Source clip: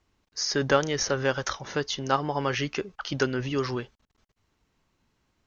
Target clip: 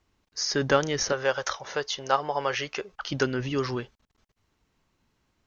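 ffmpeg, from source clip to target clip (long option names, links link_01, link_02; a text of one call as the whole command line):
ffmpeg -i in.wav -filter_complex "[0:a]asettb=1/sr,asplit=3[link_01][link_02][link_03];[link_01]atrim=end=1.124[link_04];[link_02]atrim=start=1.12:end=2.92,asetpts=PTS-STARTPTS,afade=type=in:duration=0.004:curve=qsin,afade=type=out:start_time=1.796:duration=0.004:curve=qsin,lowshelf=frequency=380:width_type=q:width=1.5:gain=-9[link_05];[link_03]atrim=start=2.916[link_06];[link_04][link_05]acrossfade=duration=0.004:curve1=hsin:curve2=qsin[link_07];[link_07][link_06]acrossfade=duration=0.004:curve1=qsin:curve2=hsin" out.wav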